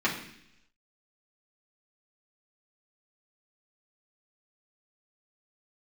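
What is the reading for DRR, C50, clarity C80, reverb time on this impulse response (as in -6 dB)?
-7.0 dB, 7.5 dB, 10.5 dB, 0.70 s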